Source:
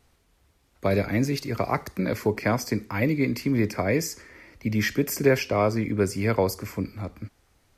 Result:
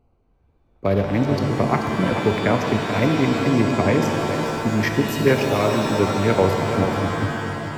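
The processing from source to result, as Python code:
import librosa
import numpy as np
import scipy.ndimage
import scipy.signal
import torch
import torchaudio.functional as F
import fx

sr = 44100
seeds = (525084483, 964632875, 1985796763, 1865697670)

p1 = fx.wiener(x, sr, points=25)
p2 = fx.bass_treble(p1, sr, bass_db=0, treble_db=-5)
p3 = p2 + fx.echo_single(p2, sr, ms=434, db=-10.0, dry=0)
p4 = fx.rider(p3, sr, range_db=5, speed_s=2.0)
p5 = fx.rev_shimmer(p4, sr, seeds[0], rt60_s=2.9, semitones=7, shimmer_db=-2, drr_db=4.5)
y = p5 * librosa.db_to_amplitude(3.5)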